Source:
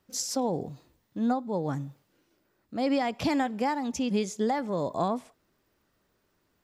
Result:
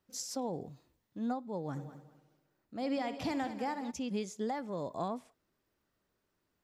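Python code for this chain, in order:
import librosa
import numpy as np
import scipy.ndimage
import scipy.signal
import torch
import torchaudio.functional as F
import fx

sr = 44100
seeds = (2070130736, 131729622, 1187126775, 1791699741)

y = fx.echo_heads(x, sr, ms=66, heads='first and third', feedback_pct=43, wet_db=-13.0, at=(1.75, 3.9), fade=0.02)
y = y * 10.0 ** (-8.5 / 20.0)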